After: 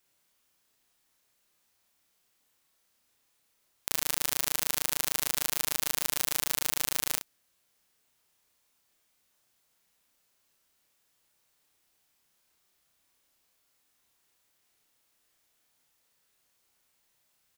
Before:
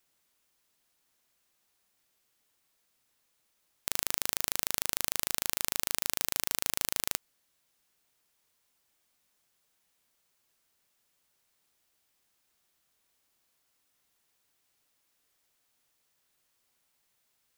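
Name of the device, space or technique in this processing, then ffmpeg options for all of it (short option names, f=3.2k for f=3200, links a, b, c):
slapback doubling: -filter_complex "[0:a]asplit=3[a][b][c];[b]adelay=31,volume=-3dB[d];[c]adelay=62,volume=-9dB[e];[a][d][e]amix=inputs=3:normalize=0"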